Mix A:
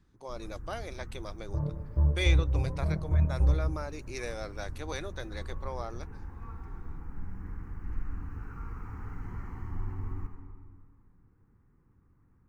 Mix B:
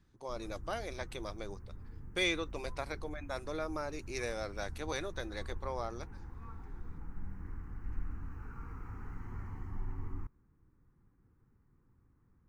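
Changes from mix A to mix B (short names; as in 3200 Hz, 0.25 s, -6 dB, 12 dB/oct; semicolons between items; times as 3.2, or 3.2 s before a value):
second sound: muted; reverb: off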